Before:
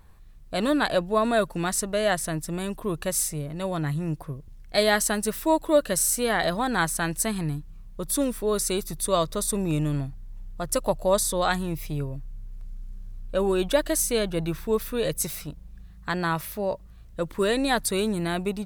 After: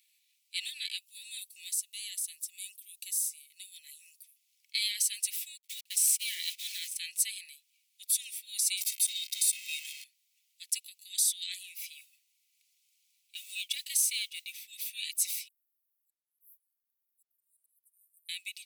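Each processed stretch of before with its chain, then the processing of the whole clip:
0:00.98–0:04.36: first difference + downward compressor 2 to 1, threshold −33 dBFS
0:05.57–0:06.98: bit-depth reduction 6 bits, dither none + noise gate −28 dBFS, range −29 dB
0:08.77–0:10.04: converter with a step at zero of −28.5 dBFS + comb filter 1.9 ms, depth 55%
0:11.91–0:14.64: high-pass filter 370 Hz + noise that follows the level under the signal 27 dB
0:15.48–0:18.29: inverse Chebyshev high-pass filter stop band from 2,700 Hz, stop band 80 dB + volume swells 796 ms + one half of a high-frequency compander decoder only
whole clip: brickwall limiter −16 dBFS; Butterworth high-pass 2,200 Hz 72 dB per octave; comb filter 3.5 ms, depth 40%

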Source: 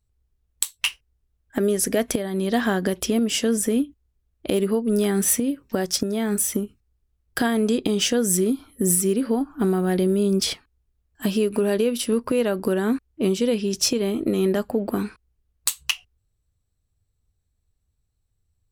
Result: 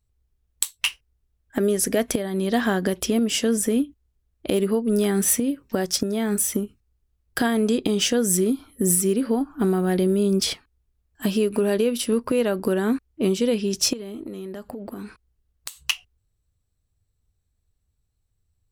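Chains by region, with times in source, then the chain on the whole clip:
0:13.93–0:15.85: notch filter 2,400 Hz, Q 22 + downward compressor 16 to 1, threshold −30 dBFS
whole clip: no processing

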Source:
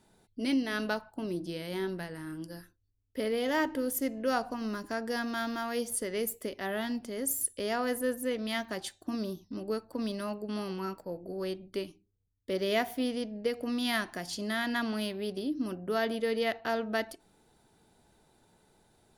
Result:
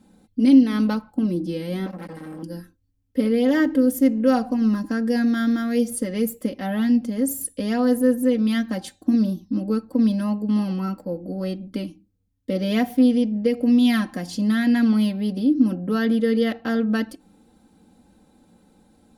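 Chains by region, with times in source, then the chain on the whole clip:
0:01.86–0:02.43: mu-law and A-law mismatch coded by mu + parametric band 340 Hz −7 dB 0.58 octaves + saturating transformer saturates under 1,900 Hz
whole clip: parametric band 170 Hz +13.5 dB 2.6 octaves; comb filter 3.8 ms, depth 85%

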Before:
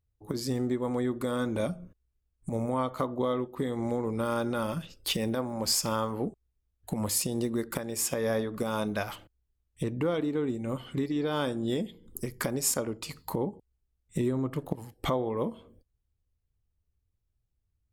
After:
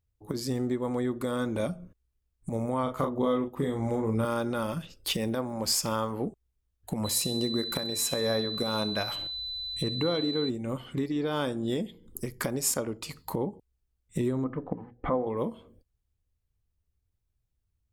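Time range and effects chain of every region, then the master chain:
0:02.83–0:04.25: low-shelf EQ 120 Hz +6.5 dB + notch filter 4,200 Hz, Q 5.3 + double-tracking delay 36 ms −5 dB
0:07.04–0:10.48: upward compression, threshold −34 dBFS + steady tone 4,000 Hz −35 dBFS + repeating echo 64 ms, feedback 53%, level −18 dB
0:14.44–0:15.27: low-pass filter 1,900 Hz 24 dB per octave + mains-hum notches 60/120/180/240/300/360/420 Hz + comb filter 4 ms, depth 40%
whole clip: no processing

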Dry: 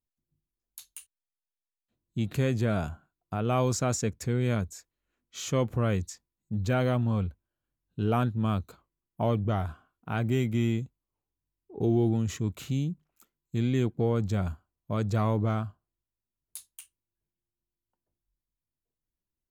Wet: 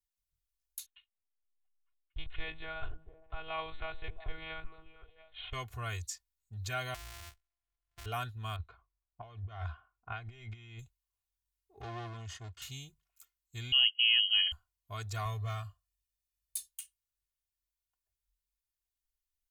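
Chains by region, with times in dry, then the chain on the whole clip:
0:00.86–0:05.53: mu-law and A-law mismatch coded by A + echo through a band-pass that steps 227 ms, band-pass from 220 Hz, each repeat 0.7 octaves, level −6 dB + one-pitch LPC vocoder at 8 kHz 160 Hz
0:06.94–0:08.06: samples sorted by size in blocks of 256 samples + downward compressor 10 to 1, threshold −35 dBFS + one half of a high-frequency compander decoder only
0:08.56–0:10.79: low-pass that shuts in the quiet parts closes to 960 Hz, open at −22 dBFS + compressor whose output falls as the input rises −31 dBFS, ratio −0.5 + high-frequency loss of the air 180 metres
0:11.81–0:12.62: lower of the sound and its delayed copy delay 0.64 ms + high-pass filter 84 Hz + high-frequency loss of the air 110 metres
0:13.72–0:14.52: voice inversion scrambler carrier 3,100 Hz + multiband upward and downward expander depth 40%
0:15.25–0:16.68: parametric band 680 Hz −4.5 dB 1.9 octaves + comb filter 1.7 ms, depth 76%
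whole clip: guitar amp tone stack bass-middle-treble 10-0-10; comb filter 2.8 ms, depth 90%

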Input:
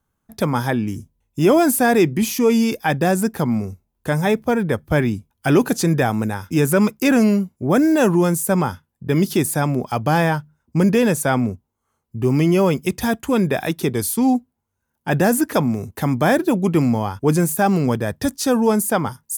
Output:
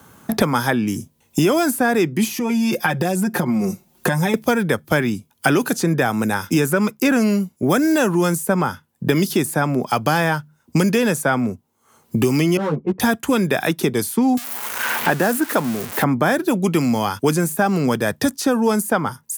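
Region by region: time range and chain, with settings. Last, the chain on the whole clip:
0:02.27–0:04.34: comb filter 5.6 ms, depth 84% + downward compressor 10 to 1, threshold −24 dBFS
0:12.57–0:13.00: low-pass filter 1,100 Hz 24 dB per octave + hard clipping −12.5 dBFS + string-ensemble chorus
0:14.37–0:16.04: spike at every zero crossing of −12.5 dBFS + high-pass filter 240 Hz 6 dB per octave
whole clip: high-pass filter 130 Hz; dynamic equaliser 1,400 Hz, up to +5 dB, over −35 dBFS, Q 2.3; multiband upward and downward compressor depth 100%; level −1 dB

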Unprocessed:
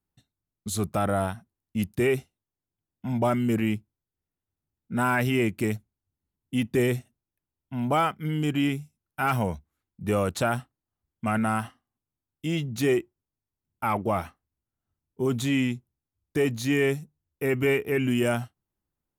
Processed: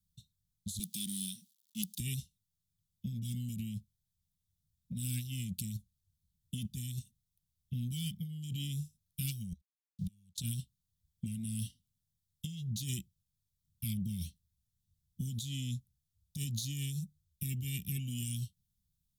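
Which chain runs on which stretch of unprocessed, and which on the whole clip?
0:00.79–0:02.00: mu-law and A-law mismatch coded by mu + high-pass filter 290 Hz 24 dB per octave
0:09.52–0:10.38: downward compressor 12 to 1, threshold −34 dBFS + centre clipping without the shift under −57 dBFS + gate with flip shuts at −31 dBFS, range −25 dB
whole clip: Chebyshev band-stop filter 190–3,400 Hz, order 4; dynamic equaliser 110 Hz, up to −5 dB, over −45 dBFS, Q 1.1; compressor whose output falls as the input rises −40 dBFS, ratio −1; level +2.5 dB

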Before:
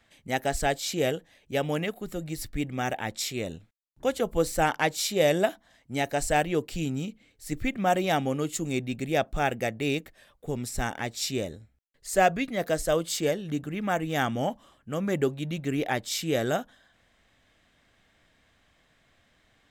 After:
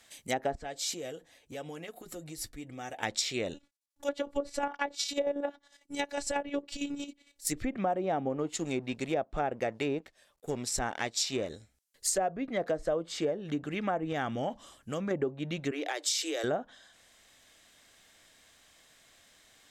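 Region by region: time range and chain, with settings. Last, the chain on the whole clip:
0:00.55–0:03.03: high-shelf EQ 2,600 Hz −10 dB + downward compressor 4 to 1, threshold −38 dBFS + notch comb filter 200 Hz
0:03.54–0:07.47: high-shelf EQ 6,100 Hz −7.5 dB + square-wave tremolo 11 Hz, depth 60% + phases set to zero 284 Hz
0:08.29–0:11.50: mu-law and A-law mismatch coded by A + one half of a high-frequency compander decoder only
0:14.12–0:15.11: low-shelf EQ 170 Hz +7 dB + downward compressor 2 to 1, threshold −31 dBFS
0:15.71–0:16.44: Chebyshev high-pass filter 290 Hz, order 8 + downward compressor, threshold −31 dBFS
whole clip: treble cut that deepens with the level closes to 950 Hz, closed at −23.5 dBFS; bass and treble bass −8 dB, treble +14 dB; downward compressor, threshold −28 dBFS; level +1.5 dB

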